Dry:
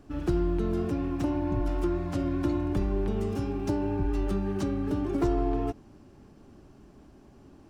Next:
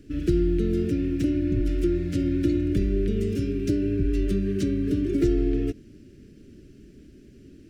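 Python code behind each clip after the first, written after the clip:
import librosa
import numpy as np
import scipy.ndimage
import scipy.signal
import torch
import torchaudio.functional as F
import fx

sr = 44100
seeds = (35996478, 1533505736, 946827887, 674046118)

y = scipy.signal.sosfilt(scipy.signal.cheby1(2, 1.0, [400.0, 2000.0], 'bandstop', fs=sr, output='sos'), x)
y = y * librosa.db_to_amplitude(5.0)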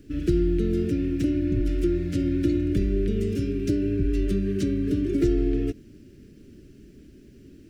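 y = fx.quant_dither(x, sr, seeds[0], bits=12, dither='none')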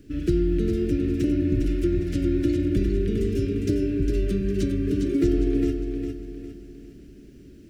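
y = fx.echo_feedback(x, sr, ms=406, feedback_pct=39, wet_db=-6)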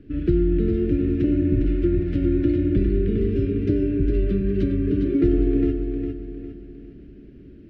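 y = fx.air_absorb(x, sr, metres=390.0)
y = y * librosa.db_to_amplitude(3.0)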